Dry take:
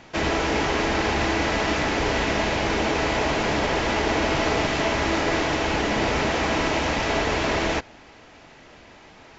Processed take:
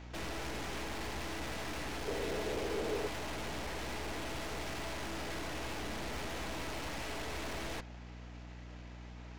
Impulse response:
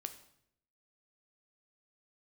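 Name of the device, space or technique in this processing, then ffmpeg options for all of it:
valve amplifier with mains hum: -filter_complex "[0:a]aeval=exprs='(tanh(63.1*val(0)+0.75)-tanh(0.75))/63.1':channel_layout=same,aeval=exprs='val(0)+0.00708*(sin(2*PI*60*n/s)+sin(2*PI*2*60*n/s)/2+sin(2*PI*3*60*n/s)/3+sin(2*PI*4*60*n/s)/4+sin(2*PI*5*60*n/s)/5)':channel_layout=same,asettb=1/sr,asplit=3[link_01][link_02][link_03];[link_01]atrim=end=2.074[link_04];[link_02]atrim=start=2.07:end=3.08,asetpts=PTS-STARTPTS,afade=type=in:duration=0.004:curve=qsin,afade=type=out:start_time=1.006:duration=0.004:curve=qsin,equalizer=frequency=440:width=2.1:gain=13[link_05];[link_03]atrim=start=3.076[link_06];[link_04][link_05]acrossfade=duration=0.004:curve1=hsin:curve2=qsin[link_07];[link_07][link_06]acrossfade=duration=0.004:curve1=qsin:curve2=hsin,volume=-4.5dB"

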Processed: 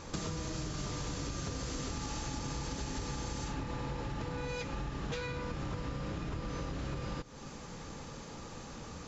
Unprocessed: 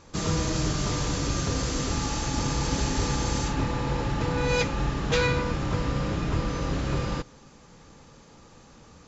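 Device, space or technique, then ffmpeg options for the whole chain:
serial compression, leveller first: -af "acompressor=threshold=-29dB:ratio=3,acompressor=threshold=-42dB:ratio=5,volume=5.5dB"

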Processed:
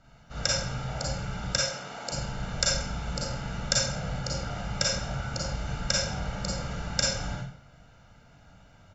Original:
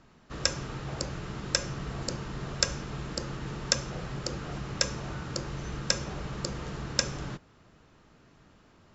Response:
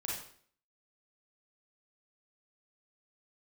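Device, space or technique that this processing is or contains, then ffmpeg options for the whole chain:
microphone above a desk: -filter_complex "[0:a]asettb=1/sr,asplit=3[link_01][link_02][link_03];[link_01]atrim=end=1.544[link_04];[link_02]atrim=start=1.54:end=2.12,asetpts=PTS-STARTPTS,afade=type=in:duration=0.004:curve=qsin,afade=type=out:start_time=0.576:duration=0.004:curve=qsin,highpass=330[link_05];[link_03]atrim=start=2.116[link_06];[link_04][link_05]acrossfade=duration=0.004:curve1=hsin:curve2=qsin[link_07];[link_07][link_06]acrossfade=duration=0.004:curve1=qsin:curve2=hsin,aecho=1:1:1.4:0.75[link_08];[1:a]atrim=start_sample=2205[link_09];[link_08][link_09]afir=irnorm=-1:irlink=0"

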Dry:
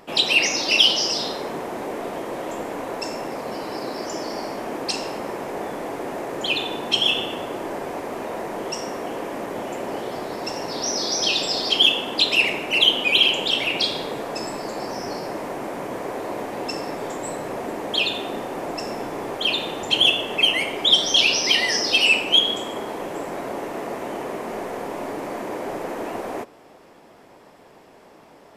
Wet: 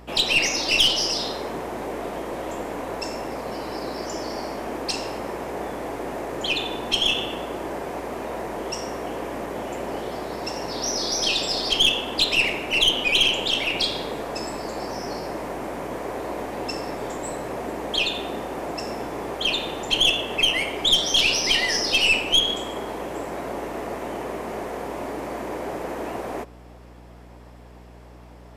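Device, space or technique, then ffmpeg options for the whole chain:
valve amplifier with mains hum: -af "aeval=exprs='(tanh(3.16*val(0)+0.35)-tanh(0.35))/3.16':channel_layout=same,aeval=exprs='val(0)+0.00562*(sin(2*PI*60*n/s)+sin(2*PI*2*60*n/s)/2+sin(2*PI*3*60*n/s)/3+sin(2*PI*4*60*n/s)/4+sin(2*PI*5*60*n/s)/5)':channel_layout=same"

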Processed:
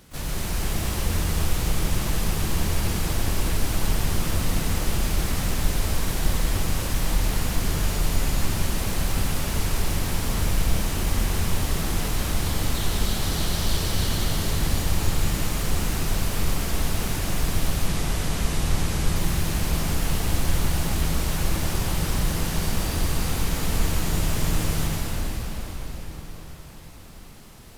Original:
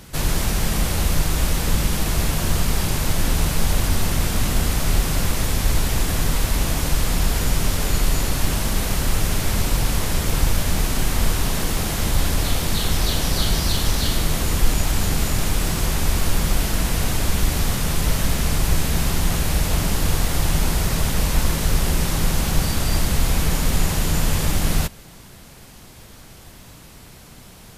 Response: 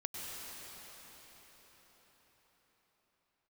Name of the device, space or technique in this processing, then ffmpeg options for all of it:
shimmer-style reverb: -filter_complex "[0:a]asplit=2[link_01][link_02];[link_02]asetrate=88200,aresample=44100,atempo=0.5,volume=-10dB[link_03];[link_01][link_03]amix=inputs=2:normalize=0[link_04];[1:a]atrim=start_sample=2205[link_05];[link_04][link_05]afir=irnorm=-1:irlink=0,asettb=1/sr,asplit=3[link_06][link_07][link_08];[link_06]atrim=end=17.874[link_09];[link_07]atrim=start=17.87:end=19.16,asetpts=PTS-STARTPTS,afade=type=in:duration=0.004:curve=qsin,afade=type=out:start_time=1.286:duration=0.004:curve=qsin,lowpass=12000[link_10];[link_08]atrim=start=19.156[link_11];[link_09][link_10]acrossfade=duration=0.004:curve1=hsin:curve2=qsin[link_12];[link_12][link_11]acrossfade=duration=0.004:curve1=qsin:curve2=hsin,volume=-6dB"

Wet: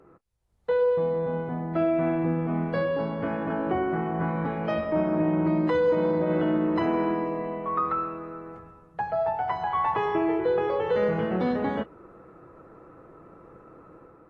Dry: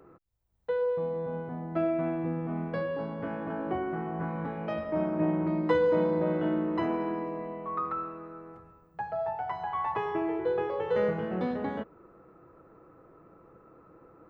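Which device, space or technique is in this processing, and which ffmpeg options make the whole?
low-bitrate web radio: -af "dynaudnorm=framelen=120:gausssize=7:maxgain=6dB,alimiter=limit=-16dB:level=0:latency=1:release=53" -ar 32000 -c:a aac -b:a 32k

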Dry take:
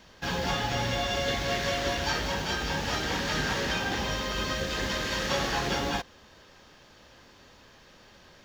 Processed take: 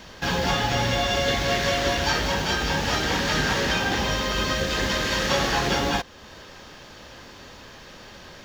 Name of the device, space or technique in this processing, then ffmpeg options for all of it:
parallel compression: -filter_complex "[0:a]asplit=2[link_01][link_02];[link_02]acompressor=threshold=-44dB:ratio=6,volume=0dB[link_03];[link_01][link_03]amix=inputs=2:normalize=0,volume=4.5dB"

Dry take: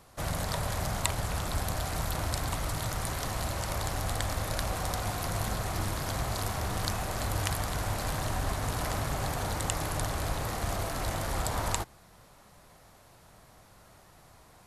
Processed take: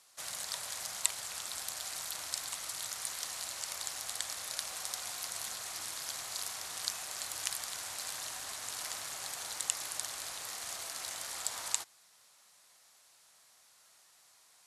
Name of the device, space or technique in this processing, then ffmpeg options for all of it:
piezo pickup straight into a mixer: -af "lowpass=7900,aderivative,volume=4.5dB"

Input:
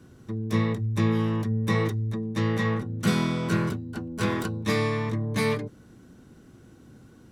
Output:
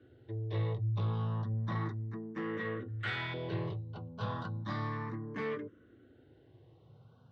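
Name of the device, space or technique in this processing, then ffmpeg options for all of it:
barber-pole phaser into a guitar amplifier: -filter_complex "[0:a]asettb=1/sr,asplit=3[link_01][link_02][link_03];[link_01]atrim=end=2.884[link_04];[link_02]atrim=start=2.88:end=3.34,asetpts=PTS-STARTPTS,afade=type=in:duration=0.004:curve=qsin,afade=type=out:start_time=0.456:duration=0.004:curve=qsin,equalizer=frequency=125:width_type=o:width=1:gain=5,equalizer=frequency=250:width_type=o:width=1:gain=-11,equalizer=frequency=500:width_type=o:width=1:gain=-11,equalizer=frequency=1000:width_type=o:width=1:gain=11,equalizer=frequency=2000:width_type=o:width=1:gain=9,equalizer=frequency=8000:width_type=o:width=1:gain=11[link_05];[link_03]atrim=start=3.336[link_06];[link_04][link_05]acrossfade=duration=0.004:curve1=hsin:curve2=qsin[link_07];[link_07][link_06]acrossfade=duration=0.004:curve1=qsin:curve2=hsin,asplit=2[link_08][link_09];[link_09]afreqshift=0.33[link_10];[link_08][link_10]amix=inputs=2:normalize=1,asoftclip=type=tanh:threshold=-23.5dB,highpass=100,equalizer=frequency=110:width_type=q:width=4:gain=4,equalizer=frequency=210:width_type=q:width=4:gain=-9,equalizer=frequency=2400:width_type=q:width=4:gain=-9,lowpass=frequency=3600:width=0.5412,lowpass=frequency=3600:width=1.3066,volume=-4dB"

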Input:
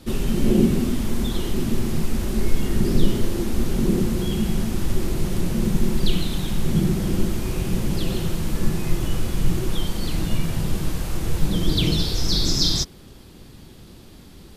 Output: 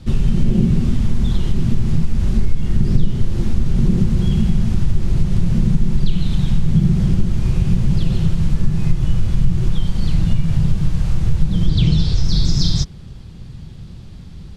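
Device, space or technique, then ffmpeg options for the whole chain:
jukebox: -filter_complex "[0:a]asettb=1/sr,asplit=3[link_01][link_02][link_03];[link_01]atrim=end=11.674[link_04];[link_02]atrim=start=11.67:end=12.25,asetpts=PTS-STARTPTS,afade=type=in:duration=0.004:curve=qsin,afade=type=out:start_time=0.576:duration=0.004:curve=qsin,lowpass=frequency=9200:width=0.5412,lowpass=frequency=9200:width=1.3066[link_05];[link_03]atrim=start=12.246[link_06];[link_04][link_05]acrossfade=duration=0.004:curve1=hsin:curve2=qsin[link_07];[link_07][link_06]acrossfade=duration=0.004:curve1=qsin:curve2=hsin,lowpass=6900,lowshelf=frequency=210:width_type=q:width=1.5:gain=10.5,acompressor=threshold=-10dB:ratio=3"

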